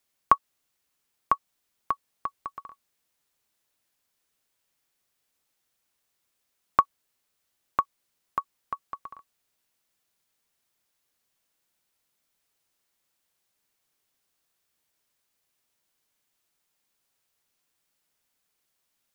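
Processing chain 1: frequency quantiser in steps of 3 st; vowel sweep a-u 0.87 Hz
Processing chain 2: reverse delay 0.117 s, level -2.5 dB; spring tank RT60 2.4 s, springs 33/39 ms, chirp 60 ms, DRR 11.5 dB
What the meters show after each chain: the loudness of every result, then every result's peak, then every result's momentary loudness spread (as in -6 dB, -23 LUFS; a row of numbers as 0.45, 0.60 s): -37.0, -29.5 LUFS; -14.0, -3.5 dBFS; 21, 19 LU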